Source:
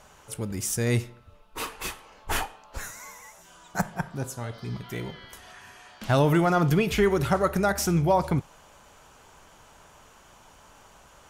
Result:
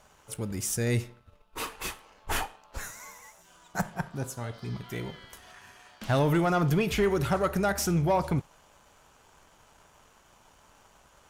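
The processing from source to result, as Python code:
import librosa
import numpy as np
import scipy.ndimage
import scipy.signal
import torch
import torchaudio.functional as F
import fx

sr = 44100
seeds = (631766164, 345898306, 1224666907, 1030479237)

y = fx.leveller(x, sr, passes=1)
y = y * librosa.db_to_amplitude(-5.5)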